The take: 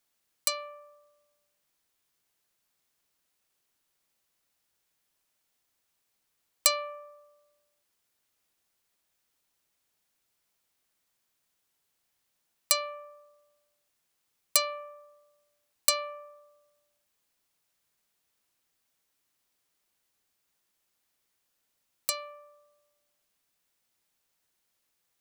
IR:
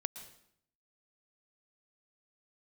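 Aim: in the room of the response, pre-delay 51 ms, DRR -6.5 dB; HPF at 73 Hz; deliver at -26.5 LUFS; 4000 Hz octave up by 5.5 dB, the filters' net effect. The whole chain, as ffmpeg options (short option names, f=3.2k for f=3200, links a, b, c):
-filter_complex "[0:a]highpass=73,equalizer=f=4k:t=o:g=6,asplit=2[a][b];[1:a]atrim=start_sample=2205,adelay=51[c];[b][c]afir=irnorm=-1:irlink=0,volume=7dB[d];[a][d]amix=inputs=2:normalize=0,volume=-6.5dB"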